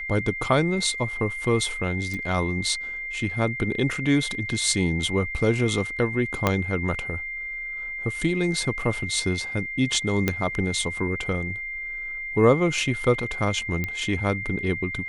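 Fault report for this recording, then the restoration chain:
whine 2.1 kHz -30 dBFS
2.14 s: pop
6.47 s: pop -6 dBFS
10.28 s: pop -8 dBFS
13.84 s: pop -14 dBFS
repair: de-click; band-stop 2.1 kHz, Q 30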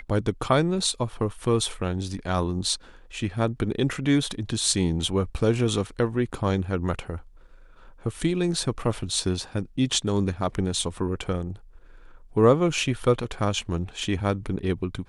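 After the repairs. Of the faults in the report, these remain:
6.47 s: pop
10.28 s: pop

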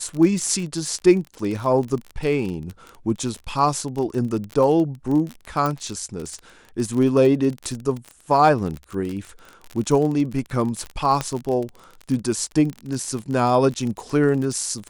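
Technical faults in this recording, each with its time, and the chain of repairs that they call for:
crackle 33 per s -26 dBFS
5.66 s: pop
11.21 s: pop -9 dBFS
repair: de-click

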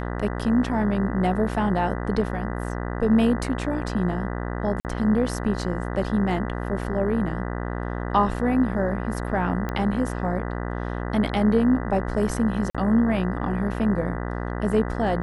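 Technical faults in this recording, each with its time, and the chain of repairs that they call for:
buzz 60 Hz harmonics 33 -29 dBFS
4.80–4.85 s: dropout 48 ms
9.69 s: pop -16 dBFS
12.70–12.75 s: dropout 46 ms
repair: de-click; de-hum 60 Hz, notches 33; interpolate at 4.80 s, 48 ms; interpolate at 12.70 s, 46 ms

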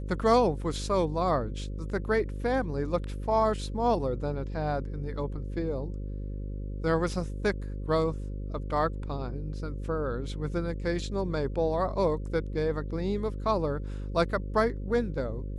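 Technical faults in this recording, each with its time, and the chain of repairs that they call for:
buzz 50 Hz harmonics 11 -35 dBFS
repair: de-hum 50 Hz, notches 11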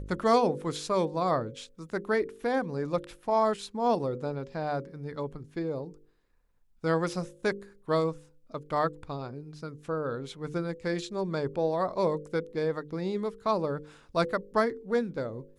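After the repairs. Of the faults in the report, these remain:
nothing left

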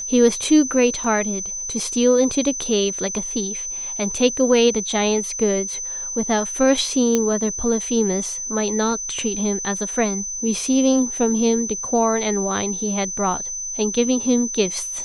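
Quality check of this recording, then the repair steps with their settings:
whine 6.1 kHz -26 dBFS
1.04 s: dropout 3.4 ms
7.15 s: pop -5 dBFS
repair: de-click; band-stop 6.1 kHz, Q 30; interpolate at 1.04 s, 3.4 ms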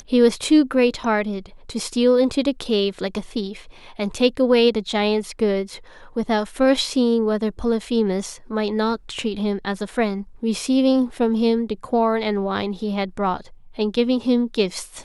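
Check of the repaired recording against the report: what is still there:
nothing left

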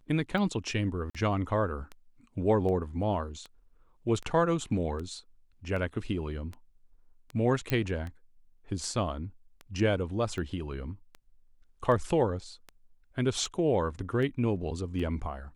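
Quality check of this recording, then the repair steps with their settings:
tick 78 rpm -27 dBFS
1.10–1.15 s: dropout 46 ms
7.70 s: pop -14 dBFS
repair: de-click; interpolate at 1.10 s, 46 ms

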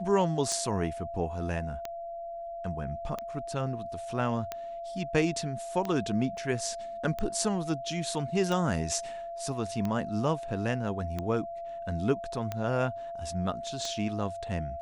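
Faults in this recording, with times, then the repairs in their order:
tick 45 rpm -19 dBFS
whine 680 Hz -36 dBFS
6.37 s: dropout 2.1 ms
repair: de-click; band-stop 680 Hz, Q 30; interpolate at 6.37 s, 2.1 ms

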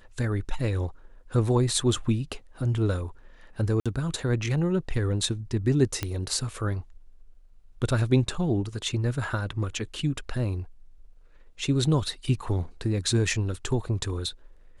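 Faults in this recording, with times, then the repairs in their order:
3.80–3.86 s: dropout 56 ms
6.03 s: pop -13 dBFS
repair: de-click; interpolate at 3.80 s, 56 ms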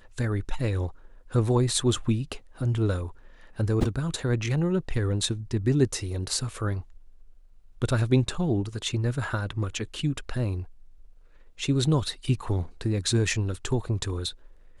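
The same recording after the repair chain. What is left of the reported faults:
nothing left

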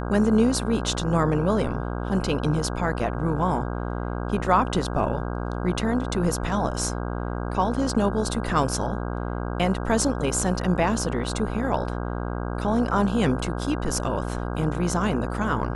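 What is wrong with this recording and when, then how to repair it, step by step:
buzz 60 Hz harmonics 27 -29 dBFS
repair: de-hum 60 Hz, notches 27

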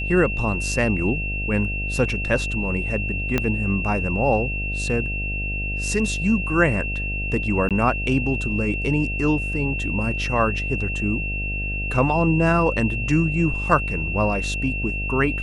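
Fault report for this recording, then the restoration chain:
buzz 50 Hz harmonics 15 -28 dBFS
whine 2.7 kHz -27 dBFS
3.38 s: pop -7 dBFS
7.69–7.71 s: dropout 17 ms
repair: de-click; de-hum 50 Hz, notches 15; band-stop 2.7 kHz, Q 30; interpolate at 7.69 s, 17 ms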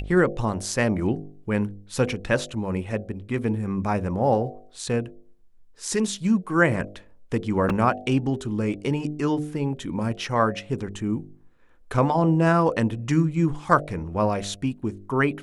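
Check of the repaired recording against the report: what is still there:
3.38 s: pop

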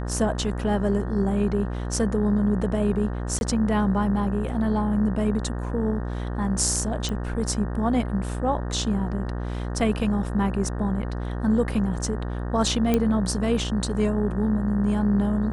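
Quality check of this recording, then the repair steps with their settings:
buzz 60 Hz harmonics 31 -29 dBFS
3.39–3.41 s: dropout 21 ms
7.09 s: pop -17 dBFS
12.94 s: pop -9 dBFS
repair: de-click; de-hum 60 Hz, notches 31; interpolate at 3.39 s, 21 ms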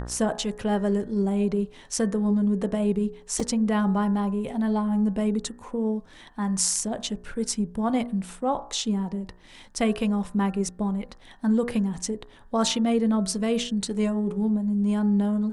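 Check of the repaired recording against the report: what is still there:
nothing left

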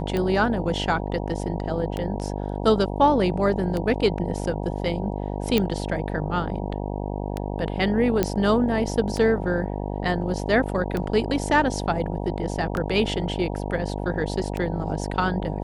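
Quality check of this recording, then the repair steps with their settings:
buzz 50 Hz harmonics 19 -29 dBFS
tick 33 1/3 rpm -14 dBFS
5.58 s: pop -8 dBFS
8.23 s: pop -7 dBFS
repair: de-click; de-hum 50 Hz, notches 19

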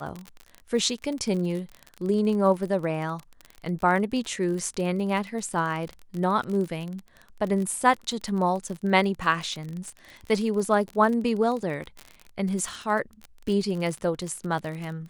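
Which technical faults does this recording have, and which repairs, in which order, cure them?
crackle 35 per s -30 dBFS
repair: de-click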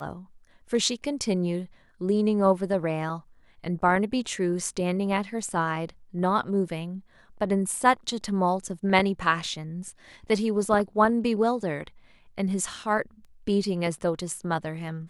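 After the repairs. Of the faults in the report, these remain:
nothing left

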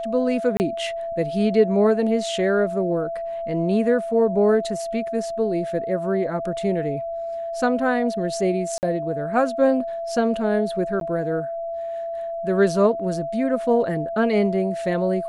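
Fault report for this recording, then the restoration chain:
whine 670 Hz -26 dBFS
0.57–0.60 s: dropout 29 ms
8.78–8.83 s: dropout 49 ms
11.00–11.01 s: dropout 12 ms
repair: band-stop 670 Hz, Q 30; interpolate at 0.57 s, 29 ms; interpolate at 8.78 s, 49 ms; interpolate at 11.00 s, 12 ms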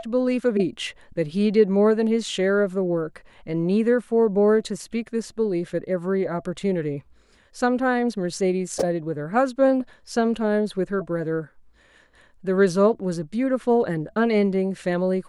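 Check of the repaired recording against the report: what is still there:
nothing left

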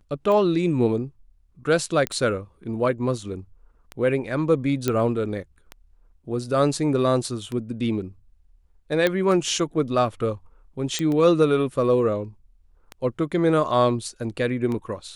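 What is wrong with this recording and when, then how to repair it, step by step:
tick 33 1/3 rpm -18 dBFS
2.07 s: pop -10 dBFS
4.88 s: pop -8 dBFS
9.07 s: pop -8 dBFS
10.99 s: pop -12 dBFS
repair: de-click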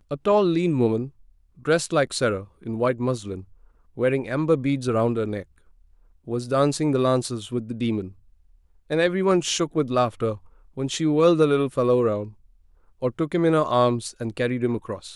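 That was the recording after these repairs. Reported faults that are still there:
nothing left

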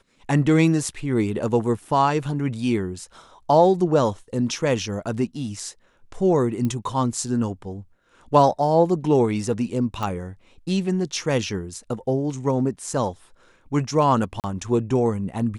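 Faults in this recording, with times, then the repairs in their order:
6.65 s: pop -15 dBFS
10.03 s: pop -15 dBFS
14.40–14.44 s: dropout 38 ms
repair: de-click; interpolate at 14.40 s, 38 ms

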